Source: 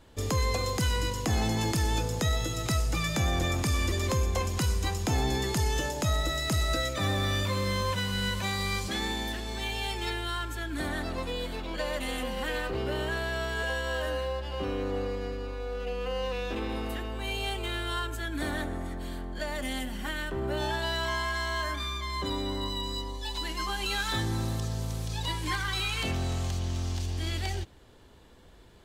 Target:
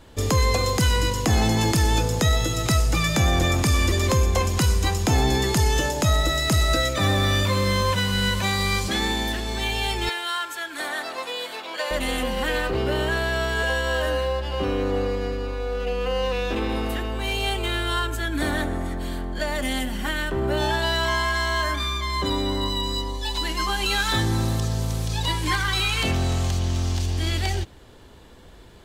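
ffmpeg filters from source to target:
-filter_complex "[0:a]asettb=1/sr,asplit=3[a][b][c];[a]atrim=end=10.094[d];[b]atrim=start=10.09:end=11.91,asetpts=PTS-STARTPTS,afade=t=in:d=0.004:c=qsin,afade=t=out:st=1.816:d=0.004:c=qsin,highpass=640[e];[c]atrim=start=11.906[f];[d][e]acrossfade=d=0.004:c1=hsin:c2=qsin[g];[g][f]acrossfade=d=0.004:c1=qsin:c2=hsin,asettb=1/sr,asplit=3[h][i][j];[h]atrim=end=16.874[k];[i]atrim=start=16.87:end=17.44,asetpts=PTS-STARTPTS,afade=t=in:d=0.004:c=qsin,afade=t=out:st=0.566:d=0.004:c=qsin,volume=27.5dB,asoftclip=hard,volume=-27.5dB[l];[j]atrim=start=17.436[m];[k][l]acrossfade=d=0.004:c1=hsin:c2=qsin[n];[n][m]acrossfade=d=0.004:c1=qsin:c2=hsin,volume=7.5dB"

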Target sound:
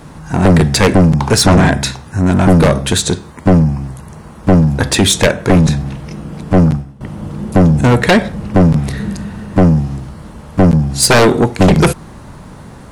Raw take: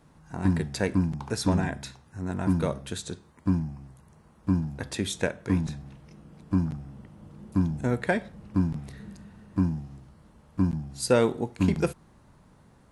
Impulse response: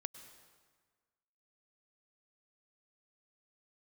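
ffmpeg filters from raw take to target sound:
-filter_complex "[0:a]aeval=exprs='0.355*sin(PI/2*3.98*val(0)/0.355)':c=same,acontrast=81,asettb=1/sr,asplit=3[a][b][c];[a]atrim=end=6.534[d];[b]atrim=start=6.53:end=7.01,asetpts=PTS-STARTPTS,afade=t=in:d=0.004:c=qsin,afade=t=out:st=0.476:d=0.004:c=qsin,agate=range=-33dB:threshold=-9dB:ratio=3:detection=peak[e];[c]atrim=start=7.006[f];[d][e]acrossfade=d=0.004:c1=hsin:c2=qsin[g];[g][f]acrossfade=d=0.004:c1=qsin:c2=hsin"

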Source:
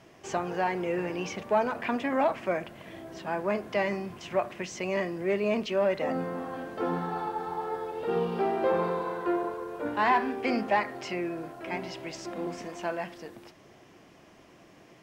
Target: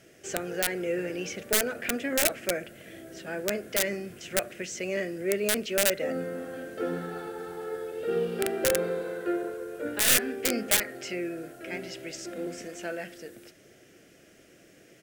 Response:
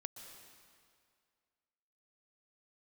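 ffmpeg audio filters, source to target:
-af "aeval=exprs='(mod(7.5*val(0)+1,2)-1)/7.5':c=same,firequalizer=gain_entry='entry(190,0);entry(510,5);entry(1000,-17);entry(1400,4);entry(2100,3);entry(4300,3);entry(8200,12)':delay=0.05:min_phase=1,aeval=exprs='0.794*(cos(1*acos(clip(val(0)/0.794,-1,1)))-cos(1*PI/2))+0.224*(cos(2*acos(clip(val(0)/0.794,-1,1)))-cos(2*PI/2))+0.0158*(cos(8*acos(clip(val(0)/0.794,-1,1)))-cos(8*PI/2))':c=same,volume=-3dB"

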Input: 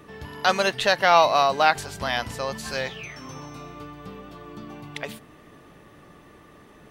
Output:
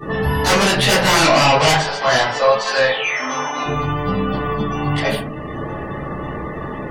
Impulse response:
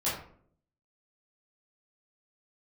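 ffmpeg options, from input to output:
-filter_complex "[0:a]aeval=exprs='if(lt(val(0),0),0.708*val(0),val(0))':c=same,acontrast=45,asettb=1/sr,asplit=3[a][b][c];[a]atrim=end=1.144[d];[b]atrim=start=1.14:end=3.66,asetpts=PTS-STARTPTS,afade=t=in:d=0.004:c=qsin,afade=t=out:st=2.516:d=0.004:c=qsin,highpass=490,lowpass=5k[e];[c]atrim=start=3.656[f];[d][e]acrossfade=d=0.004:c1=hsin:c2=qsin[g];[g][f]acrossfade=d=0.004:c1=qsin:c2=hsin,aeval=exprs='0.944*sin(PI/2*7.08*val(0)/0.944)':c=same,alimiter=limit=-7dB:level=0:latency=1:release=471[h];[1:a]atrim=start_sample=2205[i];[h][i]afir=irnorm=-1:irlink=0,afftdn=nr=23:nf=-23,volume=-10dB"

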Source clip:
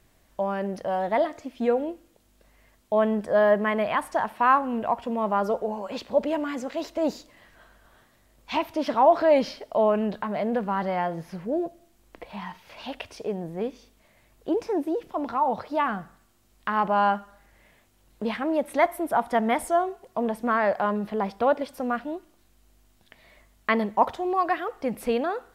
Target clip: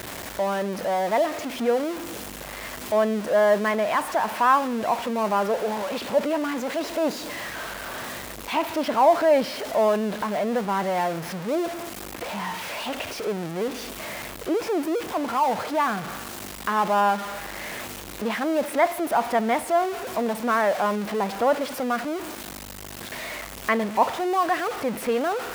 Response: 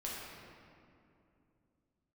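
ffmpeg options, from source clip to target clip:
-filter_complex "[0:a]aeval=exprs='val(0)+0.5*0.0501*sgn(val(0))':c=same,highpass=f=230:p=1,acrossover=split=2900[a][b];[b]alimiter=level_in=6dB:limit=-24dB:level=0:latency=1:release=325,volume=-6dB[c];[a][c]amix=inputs=2:normalize=0"

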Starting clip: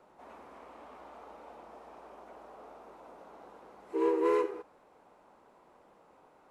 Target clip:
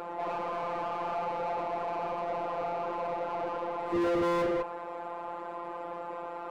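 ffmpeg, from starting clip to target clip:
-filter_complex "[0:a]afftfilt=real='hypot(re,im)*cos(PI*b)':imag='0':win_size=1024:overlap=0.75,asplit=2[a][b];[b]highpass=f=720:p=1,volume=42dB,asoftclip=type=tanh:threshold=-17.5dB[c];[a][c]amix=inputs=2:normalize=0,lowpass=f=1.1k:p=1,volume=-6dB,volume=-3dB"

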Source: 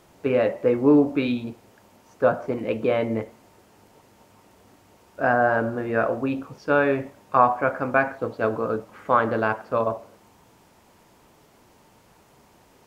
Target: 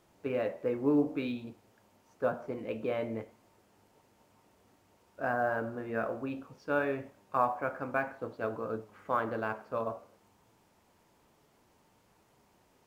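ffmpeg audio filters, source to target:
-af "flanger=delay=8.7:depth=5.7:regen=84:speed=0.57:shape=triangular,volume=-6.5dB" -ar 44100 -c:a adpcm_ima_wav

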